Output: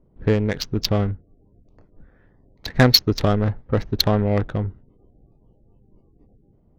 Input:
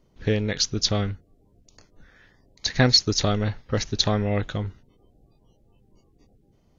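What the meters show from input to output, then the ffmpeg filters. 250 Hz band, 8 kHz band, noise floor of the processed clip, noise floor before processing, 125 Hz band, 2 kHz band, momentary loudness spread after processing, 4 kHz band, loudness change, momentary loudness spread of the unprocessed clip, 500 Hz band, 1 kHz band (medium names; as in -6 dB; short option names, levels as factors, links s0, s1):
+4.5 dB, no reading, -58 dBFS, -62 dBFS, +4.0 dB, +2.0 dB, 13 LU, +1.0 dB, +3.0 dB, 14 LU, +4.5 dB, +4.0 dB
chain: -af "adynamicsmooth=sensitivity=1:basefreq=890,volume=1.68"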